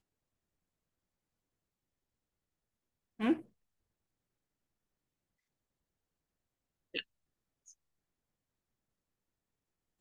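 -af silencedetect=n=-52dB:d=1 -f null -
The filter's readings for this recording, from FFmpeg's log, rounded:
silence_start: 0.00
silence_end: 3.19 | silence_duration: 3.19
silence_start: 3.42
silence_end: 6.94 | silence_duration: 3.52
silence_start: 7.72
silence_end: 10.01 | silence_duration: 2.29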